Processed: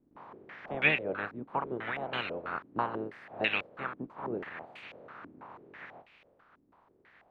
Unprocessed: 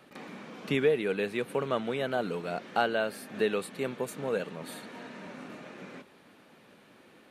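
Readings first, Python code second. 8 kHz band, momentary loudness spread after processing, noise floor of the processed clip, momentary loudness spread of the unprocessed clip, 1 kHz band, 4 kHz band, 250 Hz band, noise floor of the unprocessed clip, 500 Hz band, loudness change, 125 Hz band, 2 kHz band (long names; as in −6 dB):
below −25 dB, 22 LU, −68 dBFS, 17 LU, −1.0 dB, −0.5 dB, −6.0 dB, −58 dBFS, −9.0 dB, −2.5 dB, −5.0 dB, +3.0 dB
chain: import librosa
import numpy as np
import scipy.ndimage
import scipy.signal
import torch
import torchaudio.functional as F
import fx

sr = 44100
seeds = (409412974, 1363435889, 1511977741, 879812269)

y = fx.spec_clip(x, sr, under_db=24)
y = fx.filter_held_lowpass(y, sr, hz=6.1, low_hz=290.0, high_hz=2500.0)
y = F.gain(torch.from_numpy(y), -7.0).numpy()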